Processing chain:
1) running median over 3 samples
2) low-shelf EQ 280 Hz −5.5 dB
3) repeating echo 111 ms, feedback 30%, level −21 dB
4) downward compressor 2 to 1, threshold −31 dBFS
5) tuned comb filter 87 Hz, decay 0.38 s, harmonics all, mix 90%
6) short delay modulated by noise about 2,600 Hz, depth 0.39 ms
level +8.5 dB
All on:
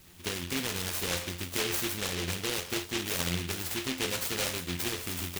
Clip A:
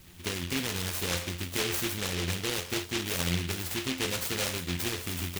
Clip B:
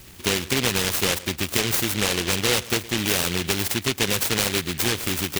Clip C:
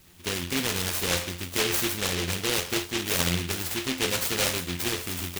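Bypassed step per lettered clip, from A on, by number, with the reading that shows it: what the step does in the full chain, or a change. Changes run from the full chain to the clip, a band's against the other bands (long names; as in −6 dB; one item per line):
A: 2, 125 Hz band +3.0 dB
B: 5, change in integrated loudness +9.5 LU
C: 4, average gain reduction 4.0 dB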